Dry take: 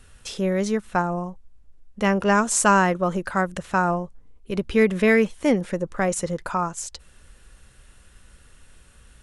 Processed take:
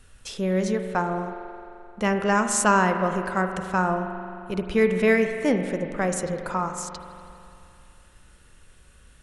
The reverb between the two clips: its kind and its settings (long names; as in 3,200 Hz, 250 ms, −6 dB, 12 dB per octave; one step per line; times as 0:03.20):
spring reverb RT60 2.7 s, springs 43 ms, chirp 40 ms, DRR 6.5 dB
level −2.5 dB